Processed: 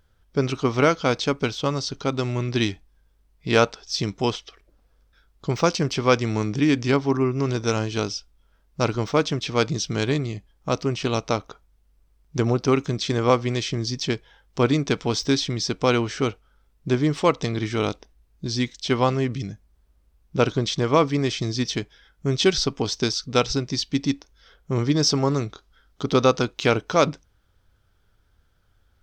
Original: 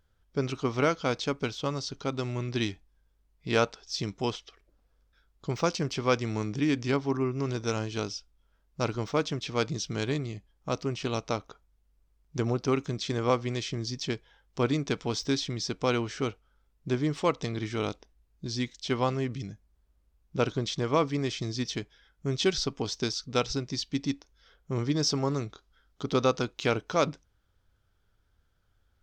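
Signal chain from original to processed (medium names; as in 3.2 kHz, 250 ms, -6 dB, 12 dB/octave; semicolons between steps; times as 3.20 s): band-stop 6.9 kHz, Q 27; trim +7 dB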